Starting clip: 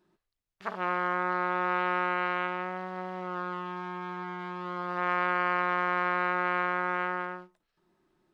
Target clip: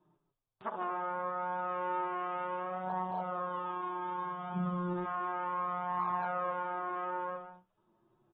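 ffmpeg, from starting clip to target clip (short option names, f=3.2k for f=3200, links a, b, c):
-filter_complex "[0:a]equalizer=f=125:t=o:w=1:g=10,equalizer=f=500:t=o:w=1:g=4,equalizer=f=1k:t=o:w=1:g=8,equalizer=f=2k:t=o:w=1:g=-10,acrossover=split=420|1400[a][b][c];[a]acompressor=threshold=-41dB:ratio=4[d];[b]acompressor=threshold=-30dB:ratio=4[e];[c]acompressor=threshold=-42dB:ratio=4[f];[d][e][f]amix=inputs=3:normalize=0,asplit=3[g][h][i];[g]afade=t=out:st=4.54:d=0.02[j];[h]asubboost=boost=11.5:cutoff=210,afade=t=in:st=4.54:d=0.02,afade=t=out:st=5.04:d=0.02[k];[i]afade=t=in:st=5.04:d=0.02[l];[j][k][l]amix=inputs=3:normalize=0,aecho=1:1:152:0.355,flanger=delay=6.4:depth=3.5:regen=6:speed=0.33:shape=triangular,acontrast=66,volume=-8dB" -ar 32000 -c:a aac -b:a 16k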